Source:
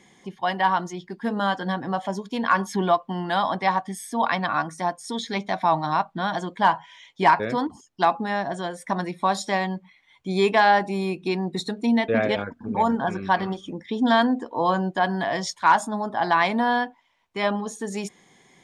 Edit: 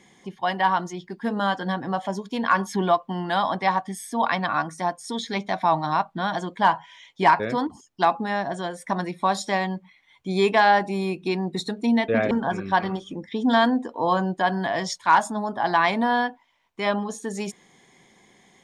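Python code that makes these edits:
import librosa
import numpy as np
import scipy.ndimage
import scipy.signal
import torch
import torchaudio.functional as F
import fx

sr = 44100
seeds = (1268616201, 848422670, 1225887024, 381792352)

y = fx.edit(x, sr, fx.cut(start_s=12.31, length_s=0.57), tone=tone)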